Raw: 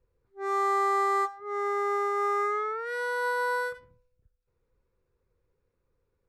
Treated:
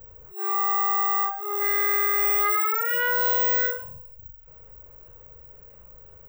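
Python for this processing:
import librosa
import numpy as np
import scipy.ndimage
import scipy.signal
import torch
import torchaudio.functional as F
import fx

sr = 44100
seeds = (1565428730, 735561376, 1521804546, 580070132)

y = fx.wiener(x, sr, points=9)
y = fx.peak_eq(y, sr, hz=2500.0, db=14.5, octaves=1.6, at=(1.6, 3.66), fade=0.02)
y = (np.kron(y[::2], np.eye(2)[0]) * 2)[:len(y)]
y = fx.peak_eq(y, sr, hz=290.0, db=-12.0, octaves=0.91)
y = fx.doubler(y, sr, ms=39.0, db=-5)
y = fx.small_body(y, sr, hz=(620.0, 2900.0), ring_ms=90, db=15)
y = fx.env_flatten(y, sr, amount_pct=50)
y = F.gain(torch.from_numpy(y), -3.0).numpy()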